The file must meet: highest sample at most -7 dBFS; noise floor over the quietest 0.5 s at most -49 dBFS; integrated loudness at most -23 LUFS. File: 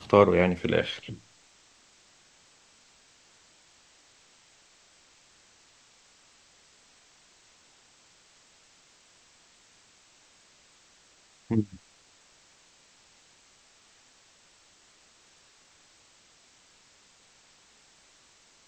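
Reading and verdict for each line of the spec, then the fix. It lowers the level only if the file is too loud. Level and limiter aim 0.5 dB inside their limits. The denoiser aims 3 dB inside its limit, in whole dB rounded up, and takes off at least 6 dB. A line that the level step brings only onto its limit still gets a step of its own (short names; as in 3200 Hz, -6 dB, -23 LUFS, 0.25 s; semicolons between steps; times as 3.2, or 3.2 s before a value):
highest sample -3.5 dBFS: fail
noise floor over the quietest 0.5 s -60 dBFS: OK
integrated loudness -26.0 LUFS: OK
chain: limiter -7.5 dBFS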